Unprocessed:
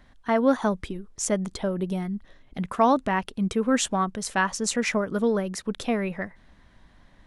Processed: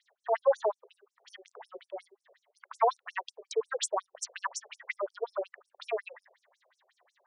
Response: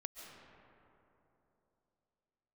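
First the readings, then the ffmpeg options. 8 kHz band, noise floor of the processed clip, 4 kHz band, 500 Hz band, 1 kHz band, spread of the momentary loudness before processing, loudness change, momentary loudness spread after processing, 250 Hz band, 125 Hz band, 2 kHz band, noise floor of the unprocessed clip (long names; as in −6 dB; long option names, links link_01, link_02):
−9.5 dB, below −85 dBFS, −8.5 dB, −5.5 dB, −7.5 dB, 12 LU, −7.5 dB, 21 LU, below −30 dB, below −40 dB, −10.5 dB, −57 dBFS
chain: -af "afftfilt=real='re*between(b*sr/1024,490*pow(7700/490,0.5+0.5*sin(2*PI*5.5*pts/sr))/1.41,490*pow(7700/490,0.5+0.5*sin(2*PI*5.5*pts/sr))*1.41)':imag='im*between(b*sr/1024,490*pow(7700/490,0.5+0.5*sin(2*PI*5.5*pts/sr))/1.41,490*pow(7700/490,0.5+0.5*sin(2*PI*5.5*pts/sr))*1.41)':win_size=1024:overlap=0.75"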